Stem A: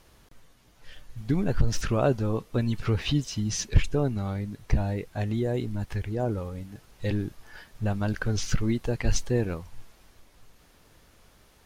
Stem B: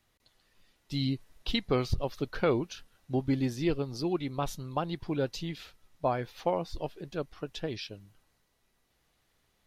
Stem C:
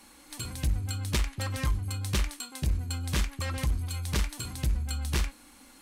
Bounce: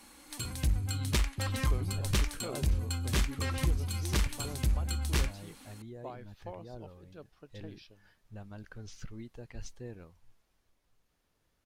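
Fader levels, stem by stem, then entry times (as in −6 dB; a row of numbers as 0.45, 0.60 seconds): −19.0, −15.5, −1.0 decibels; 0.50, 0.00, 0.00 seconds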